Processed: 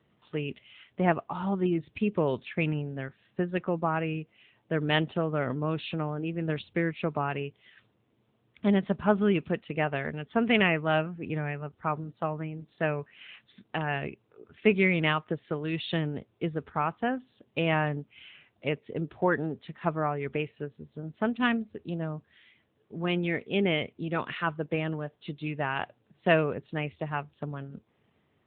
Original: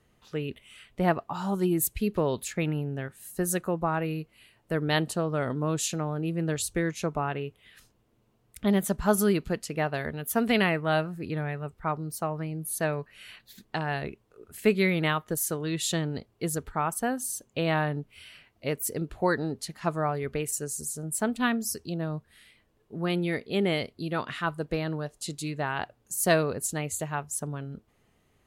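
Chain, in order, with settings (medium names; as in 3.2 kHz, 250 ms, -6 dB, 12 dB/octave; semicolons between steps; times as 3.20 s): dynamic bell 2.5 kHz, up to +5 dB, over -49 dBFS, Q 2.8; AMR-NB 10.2 kbps 8 kHz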